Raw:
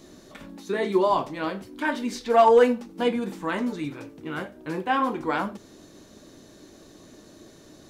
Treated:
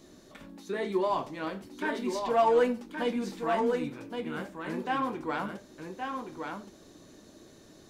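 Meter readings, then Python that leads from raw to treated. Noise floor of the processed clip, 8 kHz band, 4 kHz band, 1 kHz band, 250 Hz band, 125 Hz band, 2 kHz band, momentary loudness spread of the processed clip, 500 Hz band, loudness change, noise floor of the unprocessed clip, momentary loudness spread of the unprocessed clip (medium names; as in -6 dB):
-55 dBFS, no reading, -5.5 dB, -6.0 dB, -5.0 dB, -5.0 dB, -5.5 dB, 14 LU, -6.0 dB, -6.5 dB, -51 dBFS, 16 LU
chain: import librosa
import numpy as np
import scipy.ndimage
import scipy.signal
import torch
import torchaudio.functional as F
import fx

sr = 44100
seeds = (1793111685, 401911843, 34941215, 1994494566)

p1 = 10.0 ** (-26.5 / 20.0) * np.tanh(x / 10.0 ** (-26.5 / 20.0))
p2 = x + F.gain(torch.from_numpy(p1), -9.0).numpy()
p3 = p2 + 10.0 ** (-5.5 / 20.0) * np.pad(p2, (int(1121 * sr / 1000.0), 0))[:len(p2)]
y = F.gain(torch.from_numpy(p3), -8.0).numpy()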